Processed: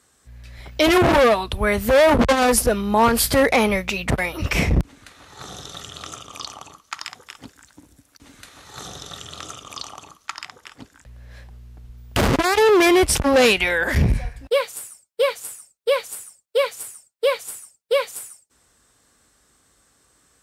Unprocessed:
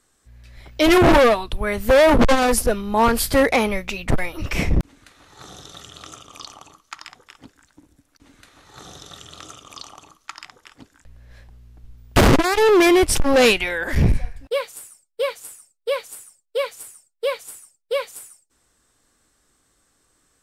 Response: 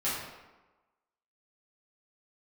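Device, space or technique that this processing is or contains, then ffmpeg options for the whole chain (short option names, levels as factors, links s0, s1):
mastering chain: -filter_complex "[0:a]highpass=f=41:w=0.5412,highpass=f=41:w=1.3066,equalizer=f=320:t=o:w=0.34:g=-3.5,acompressor=threshold=0.141:ratio=3,alimiter=level_in=3.76:limit=0.891:release=50:level=0:latency=1,asettb=1/sr,asplit=3[s0][s1][s2];[s0]atrim=end=6.944[s3];[s1]atrim=start=6.94:end=8.88,asetpts=PTS-STARTPTS,afade=t=in:d=0.004:c=qsin,afade=t=out:st=1.936:d=0.004:c=qsin,highshelf=f=4200:g=5.5[s4];[s2]atrim=start=8.876[s5];[s3][s4]acrossfade=d=0.004:c1=hsin:c2=qsin[s6];[s6][s5]acrossfade=d=0.004:c1=qsin:c2=hsin,volume=0.447"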